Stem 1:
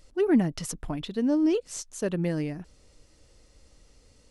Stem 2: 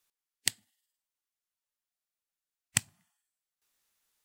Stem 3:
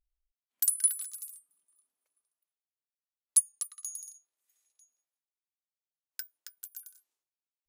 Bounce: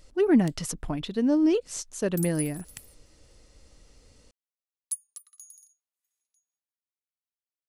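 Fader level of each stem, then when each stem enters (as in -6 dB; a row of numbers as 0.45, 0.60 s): +1.5, -17.5, -9.0 dB; 0.00, 0.00, 1.55 s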